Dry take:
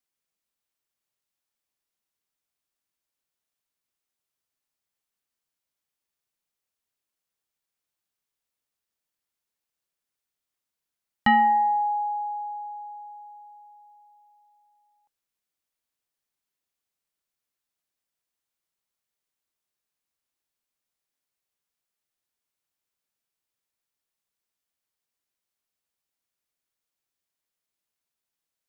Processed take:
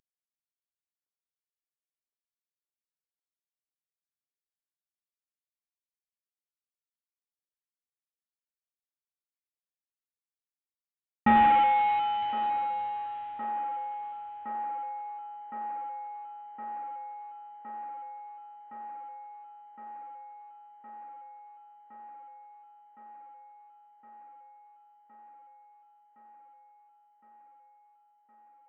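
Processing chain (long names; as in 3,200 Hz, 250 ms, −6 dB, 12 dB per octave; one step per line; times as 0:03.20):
variable-slope delta modulation 16 kbit/s
delay with a band-pass on its return 1,064 ms, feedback 80%, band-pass 710 Hz, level −10.5 dB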